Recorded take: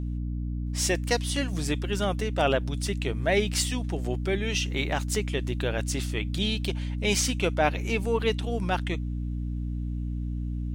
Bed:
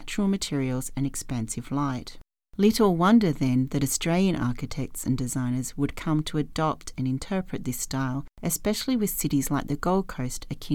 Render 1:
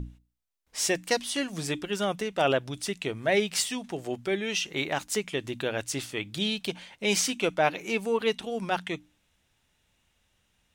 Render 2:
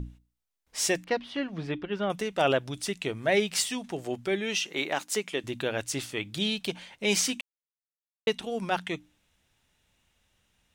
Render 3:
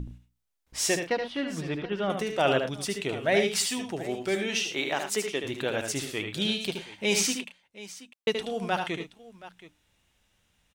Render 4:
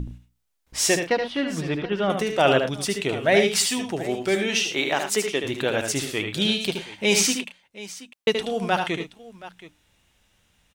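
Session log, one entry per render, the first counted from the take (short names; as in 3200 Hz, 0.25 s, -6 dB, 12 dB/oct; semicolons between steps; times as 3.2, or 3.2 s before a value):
notches 60/120/180/240/300 Hz
1.04–2.1 air absorption 330 m; 4.58–5.44 HPF 230 Hz; 7.41–8.27 mute
tapped delay 75/87/110/725 ms -6.5/-18/-14/-17.5 dB
gain +5.5 dB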